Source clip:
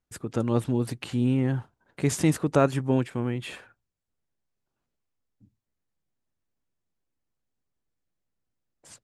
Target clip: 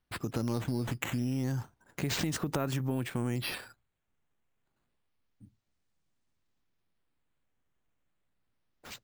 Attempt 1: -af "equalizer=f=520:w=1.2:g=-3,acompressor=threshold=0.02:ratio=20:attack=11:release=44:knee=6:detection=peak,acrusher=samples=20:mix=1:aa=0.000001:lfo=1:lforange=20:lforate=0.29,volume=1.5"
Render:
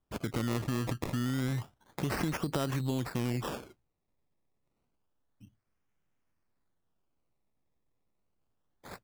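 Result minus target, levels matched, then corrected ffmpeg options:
decimation with a swept rate: distortion +4 dB
-af "equalizer=f=520:w=1.2:g=-3,acompressor=threshold=0.02:ratio=20:attack=11:release=44:knee=6:detection=peak,acrusher=samples=6:mix=1:aa=0.000001:lfo=1:lforange=6:lforate=0.29,volume=1.5"

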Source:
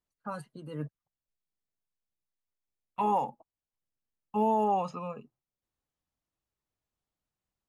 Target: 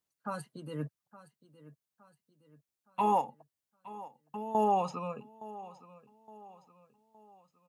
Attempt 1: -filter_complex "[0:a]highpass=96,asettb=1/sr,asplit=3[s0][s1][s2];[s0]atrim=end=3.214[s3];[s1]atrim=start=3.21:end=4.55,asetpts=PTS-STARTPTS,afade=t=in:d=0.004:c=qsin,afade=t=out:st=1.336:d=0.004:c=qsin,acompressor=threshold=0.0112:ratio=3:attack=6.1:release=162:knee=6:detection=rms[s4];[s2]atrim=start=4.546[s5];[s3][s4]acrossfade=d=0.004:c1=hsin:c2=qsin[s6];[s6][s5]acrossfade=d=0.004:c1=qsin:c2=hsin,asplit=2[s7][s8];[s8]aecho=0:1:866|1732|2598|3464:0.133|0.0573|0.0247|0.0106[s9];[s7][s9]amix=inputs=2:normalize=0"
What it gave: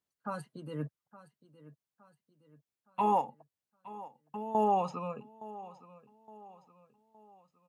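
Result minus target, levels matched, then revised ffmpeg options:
8 kHz band -4.5 dB
-filter_complex "[0:a]highpass=96,highshelf=f=4000:g=6,asettb=1/sr,asplit=3[s0][s1][s2];[s0]atrim=end=3.214[s3];[s1]atrim=start=3.21:end=4.55,asetpts=PTS-STARTPTS,afade=t=in:d=0.004:c=qsin,afade=t=out:st=1.336:d=0.004:c=qsin,acompressor=threshold=0.0112:ratio=3:attack=6.1:release=162:knee=6:detection=rms[s4];[s2]atrim=start=4.546[s5];[s3][s4]acrossfade=d=0.004:c1=hsin:c2=qsin[s6];[s6][s5]acrossfade=d=0.004:c1=qsin:c2=hsin,asplit=2[s7][s8];[s8]aecho=0:1:866|1732|2598|3464:0.133|0.0573|0.0247|0.0106[s9];[s7][s9]amix=inputs=2:normalize=0"

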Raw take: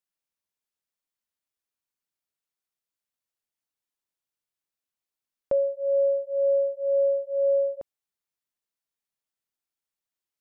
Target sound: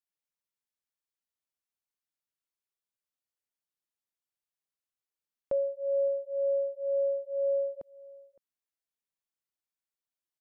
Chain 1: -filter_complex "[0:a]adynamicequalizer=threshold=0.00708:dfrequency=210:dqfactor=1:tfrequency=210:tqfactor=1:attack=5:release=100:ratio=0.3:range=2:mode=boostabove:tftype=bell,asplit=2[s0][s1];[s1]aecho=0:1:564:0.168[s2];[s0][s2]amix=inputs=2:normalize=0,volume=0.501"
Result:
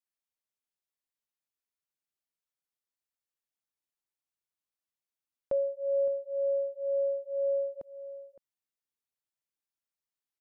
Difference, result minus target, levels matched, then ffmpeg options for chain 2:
echo-to-direct +7 dB
-filter_complex "[0:a]adynamicequalizer=threshold=0.00708:dfrequency=210:dqfactor=1:tfrequency=210:tqfactor=1:attack=5:release=100:ratio=0.3:range=2:mode=boostabove:tftype=bell,asplit=2[s0][s1];[s1]aecho=0:1:564:0.075[s2];[s0][s2]amix=inputs=2:normalize=0,volume=0.501"

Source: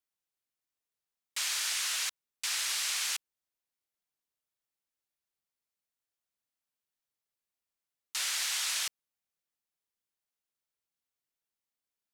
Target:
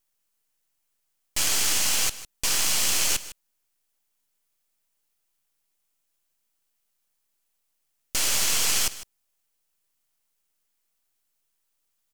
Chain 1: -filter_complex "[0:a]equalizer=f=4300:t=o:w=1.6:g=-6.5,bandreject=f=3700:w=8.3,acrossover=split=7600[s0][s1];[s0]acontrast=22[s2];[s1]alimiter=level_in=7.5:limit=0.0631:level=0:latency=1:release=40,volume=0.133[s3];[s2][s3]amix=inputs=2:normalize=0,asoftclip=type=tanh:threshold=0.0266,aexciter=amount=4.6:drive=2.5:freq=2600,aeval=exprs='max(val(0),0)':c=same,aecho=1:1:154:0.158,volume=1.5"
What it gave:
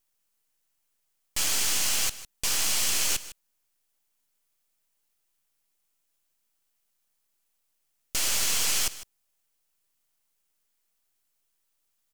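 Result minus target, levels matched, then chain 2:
saturation: distortion +16 dB
-filter_complex "[0:a]equalizer=f=4300:t=o:w=1.6:g=-6.5,bandreject=f=3700:w=8.3,acrossover=split=7600[s0][s1];[s0]acontrast=22[s2];[s1]alimiter=level_in=7.5:limit=0.0631:level=0:latency=1:release=40,volume=0.133[s3];[s2][s3]amix=inputs=2:normalize=0,asoftclip=type=tanh:threshold=0.0944,aexciter=amount=4.6:drive=2.5:freq=2600,aeval=exprs='max(val(0),0)':c=same,aecho=1:1:154:0.158,volume=1.5"

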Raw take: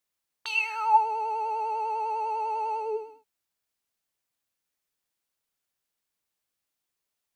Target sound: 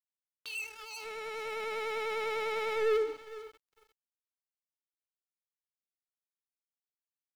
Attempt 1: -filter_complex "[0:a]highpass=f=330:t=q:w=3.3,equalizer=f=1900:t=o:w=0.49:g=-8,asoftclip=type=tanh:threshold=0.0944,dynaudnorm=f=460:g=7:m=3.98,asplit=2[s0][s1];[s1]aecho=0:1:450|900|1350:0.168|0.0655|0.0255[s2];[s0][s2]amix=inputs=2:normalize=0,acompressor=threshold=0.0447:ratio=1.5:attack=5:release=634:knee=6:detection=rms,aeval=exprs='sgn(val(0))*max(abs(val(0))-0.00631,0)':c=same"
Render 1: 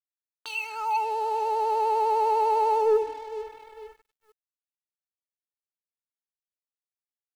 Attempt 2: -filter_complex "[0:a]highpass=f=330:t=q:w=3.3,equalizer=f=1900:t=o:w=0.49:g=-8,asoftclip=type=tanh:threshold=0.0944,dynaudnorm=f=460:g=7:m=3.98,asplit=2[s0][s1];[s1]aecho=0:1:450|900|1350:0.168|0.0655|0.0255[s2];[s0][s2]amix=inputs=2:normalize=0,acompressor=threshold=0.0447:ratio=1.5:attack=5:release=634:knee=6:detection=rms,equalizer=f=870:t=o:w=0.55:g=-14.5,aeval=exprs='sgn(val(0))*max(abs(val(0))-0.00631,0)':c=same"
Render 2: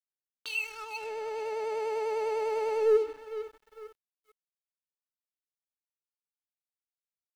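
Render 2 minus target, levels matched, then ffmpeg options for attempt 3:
saturation: distortion -6 dB
-filter_complex "[0:a]highpass=f=330:t=q:w=3.3,equalizer=f=1900:t=o:w=0.49:g=-8,asoftclip=type=tanh:threshold=0.0237,dynaudnorm=f=460:g=7:m=3.98,asplit=2[s0][s1];[s1]aecho=0:1:450|900|1350:0.168|0.0655|0.0255[s2];[s0][s2]amix=inputs=2:normalize=0,acompressor=threshold=0.0447:ratio=1.5:attack=5:release=634:knee=6:detection=rms,equalizer=f=870:t=o:w=0.55:g=-14.5,aeval=exprs='sgn(val(0))*max(abs(val(0))-0.00631,0)':c=same"

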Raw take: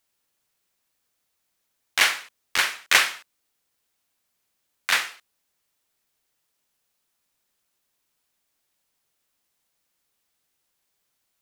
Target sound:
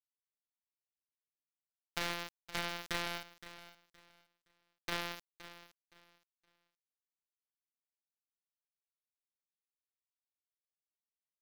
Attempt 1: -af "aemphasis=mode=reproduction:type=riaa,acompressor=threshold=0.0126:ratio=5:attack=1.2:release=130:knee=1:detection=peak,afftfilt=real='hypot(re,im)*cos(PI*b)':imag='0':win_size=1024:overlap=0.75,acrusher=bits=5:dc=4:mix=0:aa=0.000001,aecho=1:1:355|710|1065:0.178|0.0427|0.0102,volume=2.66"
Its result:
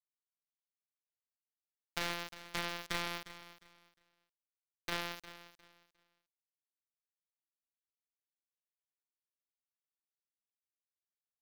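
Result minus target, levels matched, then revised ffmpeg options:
echo 163 ms early
-af "aemphasis=mode=reproduction:type=riaa,acompressor=threshold=0.0126:ratio=5:attack=1.2:release=130:knee=1:detection=peak,afftfilt=real='hypot(re,im)*cos(PI*b)':imag='0':win_size=1024:overlap=0.75,acrusher=bits=5:dc=4:mix=0:aa=0.000001,aecho=1:1:518|1036|1554:0.178|0.0427|0.0102,volume=2.66"

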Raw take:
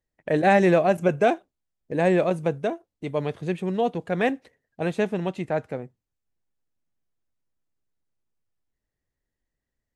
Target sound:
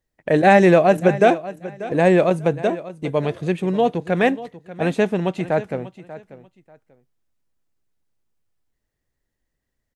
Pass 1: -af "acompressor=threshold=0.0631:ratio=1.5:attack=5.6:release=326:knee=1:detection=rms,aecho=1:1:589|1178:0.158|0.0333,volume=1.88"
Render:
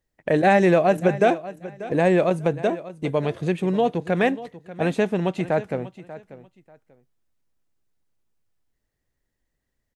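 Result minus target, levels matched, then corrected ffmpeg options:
compression: peak gain reduction +4.5 dB
-af "aecho=1:1:589|1178:0.158|0.0333,volume=1.88"

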